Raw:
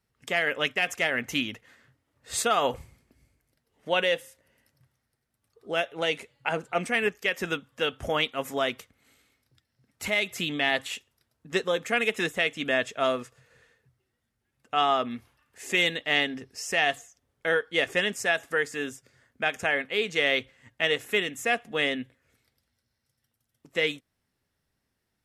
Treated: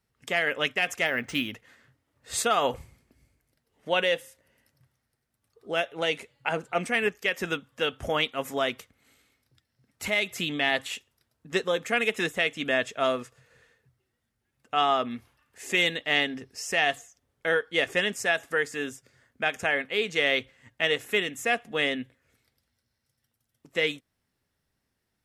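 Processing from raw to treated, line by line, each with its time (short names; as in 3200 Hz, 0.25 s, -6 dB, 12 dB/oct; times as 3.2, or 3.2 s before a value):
1.06–1.53 decimation joined by straight lines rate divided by 3×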